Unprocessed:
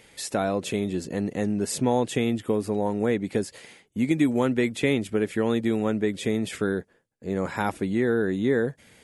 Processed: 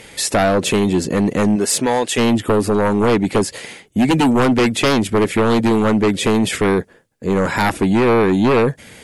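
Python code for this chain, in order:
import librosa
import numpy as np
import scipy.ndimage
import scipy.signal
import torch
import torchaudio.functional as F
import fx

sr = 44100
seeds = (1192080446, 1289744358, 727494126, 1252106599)

y = fx.highpass(x, sr, hz=fx.line((1.55, 370.0), (2.17, 1100.0)), slope=6, at=(1.55, 2.17), fade=0.02)
y = fx.fold_sine(y, sr, drive_db=10, ceiling_db=-10.0)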